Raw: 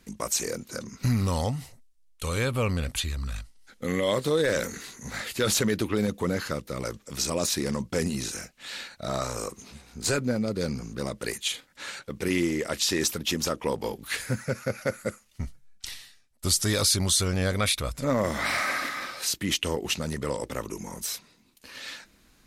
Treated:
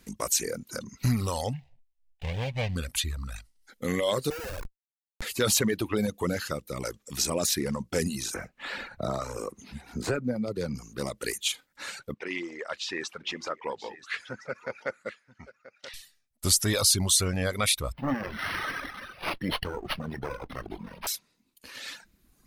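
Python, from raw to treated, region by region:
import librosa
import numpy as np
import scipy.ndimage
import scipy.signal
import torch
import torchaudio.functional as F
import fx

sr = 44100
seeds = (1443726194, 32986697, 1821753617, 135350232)

y = fx.chain(x, sr, fx.median_filter(points=41),
    fx.curve_eq(hz=(150.0, 340.0, 840.0, 1300.0, 2000.0, 3000.0, 14000.0), db=(0, -13, 9, -9, 10, 12, -12)), at=(1.53, 2.76))
y = fx.chain(y, sr, fx.self_delay(depth_ms=0.13),
    fx.bandpass_edges(low_hz=500.0, high_hz=2300.0),
    fx.schmitt(flips_db=-27.5), at=(4.3, 5.22))
y = fx.chain(y, sr, fx.high_shelf(hz=2900.0, db=-10.5),
    fx.band_squash(depth_pct=70), at=(8.34, 10.75))
y = fx.chain(y, sr, fx.bandpass_q(hz=1500.0, q=0.59),
    fx.air_absorb(metres=89.0),
    fx.echo_single(ms=982, db=-15.0), at=(12.14, 15.94))
y = fx.chain(y, sr, fx.lower_of_two(delay_ms=0.61),
    fx.doubler(ms=22.0, db=-13.0),
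    fx.resample_linear(factor=6), at=(17.92, 21.07))
y = fx.dereverb_blind(y, sr, rt60_s=1.1)
y = fx.high_shelf(y, sr, hz=10000.0, db=5.5)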